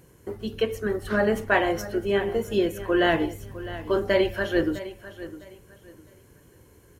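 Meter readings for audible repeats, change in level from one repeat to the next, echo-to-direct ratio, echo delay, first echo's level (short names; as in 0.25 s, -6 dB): 2, -11.5 dB, -14.5 dB, 0.657 s, -15.0 dB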